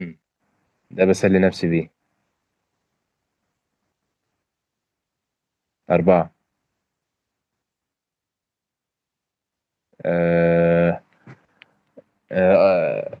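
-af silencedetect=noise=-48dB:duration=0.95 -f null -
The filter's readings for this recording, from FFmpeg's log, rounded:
silence_start: 1.88
silence_end: 5.89 | silence_duration: 4.01
silence_start: 6.29
silence_end: 9.93 | silence_duration: 3.64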